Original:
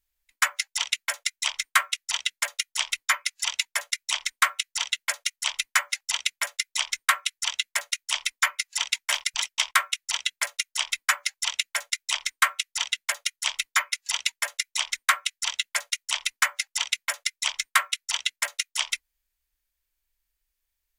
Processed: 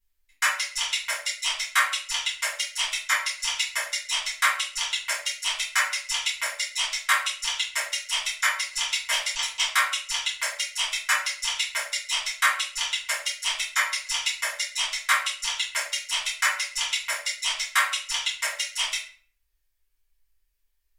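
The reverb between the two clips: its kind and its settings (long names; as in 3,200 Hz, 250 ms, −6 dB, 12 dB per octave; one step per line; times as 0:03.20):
rectangular room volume 49 cubic metres, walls mixed, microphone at 1.7 metres
level −7.5 dB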